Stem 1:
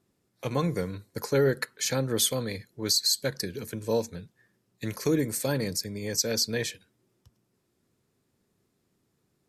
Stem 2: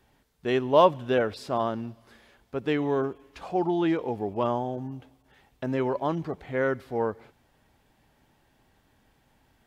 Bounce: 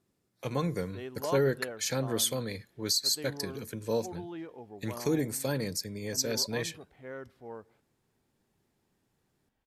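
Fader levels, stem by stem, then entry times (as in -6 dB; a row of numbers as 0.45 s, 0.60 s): -3.5 dB, -16.5 dB; 0.00 s, 0.50 s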